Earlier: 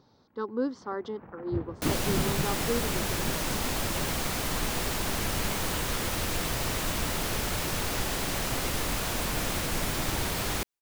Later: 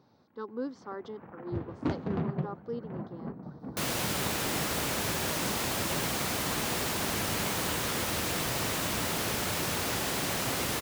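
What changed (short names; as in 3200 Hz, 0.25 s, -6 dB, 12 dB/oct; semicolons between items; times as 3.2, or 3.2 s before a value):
speech -6.0 dB; second sound: entry +1.95 s; master: add HPF 100 Hz 12 dB/oct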